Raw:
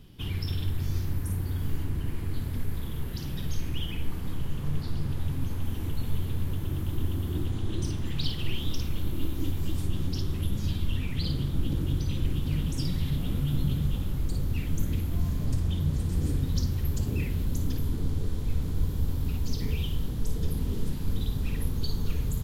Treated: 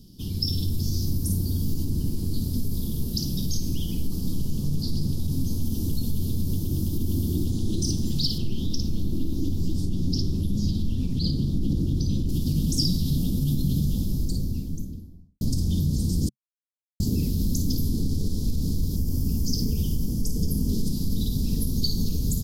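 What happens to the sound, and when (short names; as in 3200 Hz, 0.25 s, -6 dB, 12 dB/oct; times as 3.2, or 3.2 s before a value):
8.38–12.29 LPF 2700 Hz 6 dB/oct
13.85–15.41 studio fade out
16.29–17 mute
18.96–20.69 bell 3900 Hz -13.5 dB 0.35 oct
whole clip: AGC gain up to 4 dB; limiter -17 dBFS; EQ curve 130 Hz 0 dB, 210 Hz +8 dB, 2100 Hz -24 dB, 5000 Hz +14 dB, 7400 Hz +7 dB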